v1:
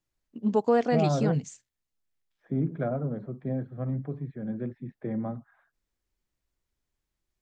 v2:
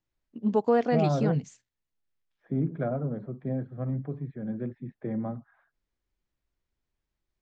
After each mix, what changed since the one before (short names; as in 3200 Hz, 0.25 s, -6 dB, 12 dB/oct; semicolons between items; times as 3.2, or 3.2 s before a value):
master: add air absorption 92 m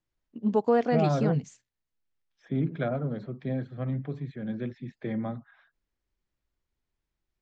second voice: remove LPF 1200 Hz 12 dB/oct